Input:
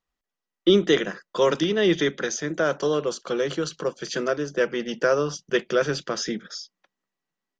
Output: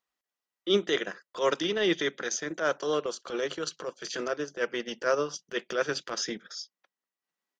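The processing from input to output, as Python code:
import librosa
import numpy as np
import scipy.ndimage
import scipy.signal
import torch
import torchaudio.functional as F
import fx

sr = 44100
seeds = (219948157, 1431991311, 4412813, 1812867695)

y = fx.highpass(x, sr, hz=470.0, slope=6)
y = fx.transient(y, sr, attack_db=-11, sustain_db=-7)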